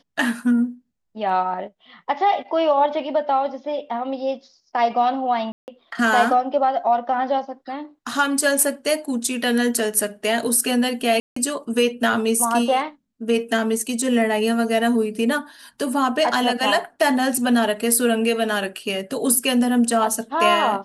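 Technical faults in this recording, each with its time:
0:05.52–0:05.68: drop-out 159 ms
0:11.20–0:11.36: drop-out 164 ms

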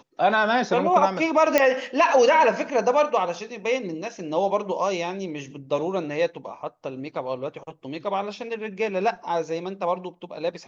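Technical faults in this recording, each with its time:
0:01.58: click −4 dBFS

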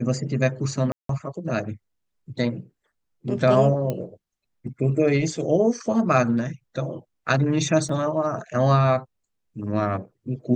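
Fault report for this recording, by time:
0:00.92–0:01.09: drop-out 173 ms
0:03.90: click −14 dBFS
0:07.89: drop-out 3.4 ms

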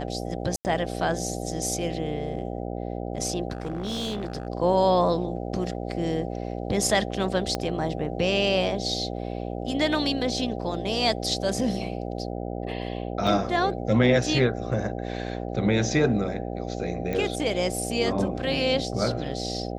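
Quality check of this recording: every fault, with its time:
mains buzz 60 Hz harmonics 13 −32 dBFS
0:00.56–0:00.65: drop-out 89 ms
0:03.50–0:04.47: clipping −26 dBFS
0:07.55: click −12 dBFS
0:13.27: drop-out 4.1 ms
0:17.13: click −17 dBFS

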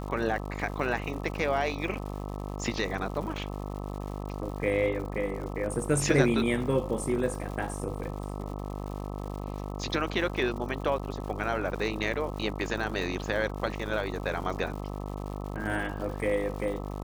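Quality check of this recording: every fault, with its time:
mains buzz 50 Hz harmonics 26 −36 dBFS
surface crackle 210 per second −39 dBFS

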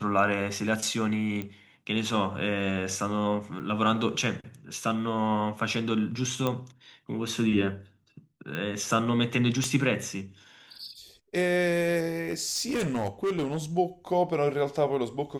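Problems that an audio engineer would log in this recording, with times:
0:01.42: click −21 dBFS
0:03.59–0:03.60: drop-out 8.9 ms
0:06.47: click −14 dBFS
0:08.55: click −20 dBFS
0:09.64: click −16 dBFS
0:12.30–0:13.58: clipping −24 dBFS

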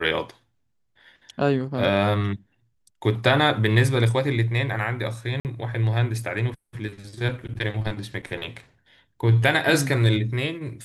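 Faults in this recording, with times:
0:05.40–0:05.45: drop-out 48 ms

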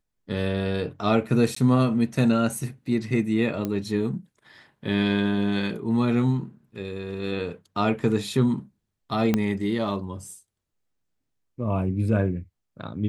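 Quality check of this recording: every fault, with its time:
0:01.55–0:01.56: drop-out 14 ms
0:03.65: click −15 dBFS
0:09.34: click −9 dBFS

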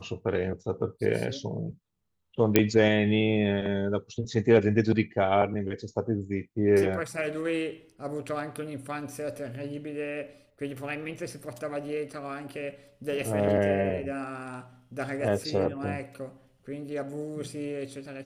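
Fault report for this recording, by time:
0:02.56: click −4 dBFS

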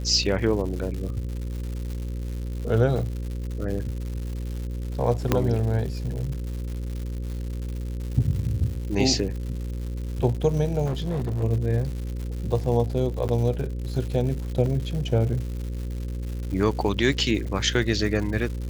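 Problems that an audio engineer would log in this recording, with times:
mains buzz 60 Hz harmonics 9 −30 dBFS
surface crackle 230 per second −33 dBFS
0:05.32: click −6 dBFS
0:10.85–0:11.44: clipping −23 dBFS
0:13.28–0:13.29: drop-out 9.1 ms
0:14.66: drop-out 2.1 ms

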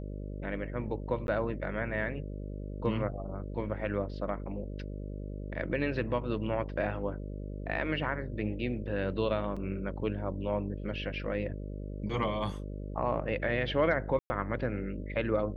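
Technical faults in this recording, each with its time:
mains buzz 50 Hz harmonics 12 −39 dBFS
0:01.27–0:01.28: drop-out 11 ms
0:09.56–0:09.57: drop-out 5.5 ms
0:14.19–0:14.30: drop-out 110 ms

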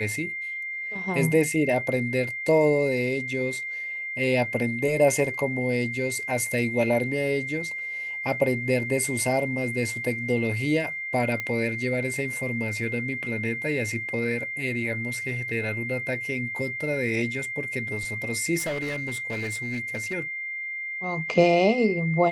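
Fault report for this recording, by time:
whistle 2,100 Hz −30 dBFS
0:11.40: click −16 dBFS
0:18.58–0:20.14: clipping −25.5 dBFS

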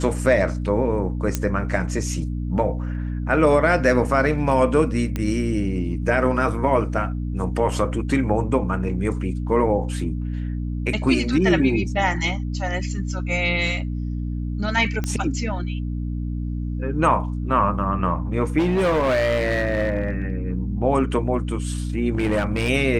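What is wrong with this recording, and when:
mains hum 60 Hz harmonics 5 −26 dBFS
0:01.35: click −7 dBFS
0:05.16: click −12 dBFS
0:15.04: click −12 dBFS
0:18.58–0:20.30: clipping −16.5 dBFS
0:22.15–0:22.70: clipping −16.5 dBFS

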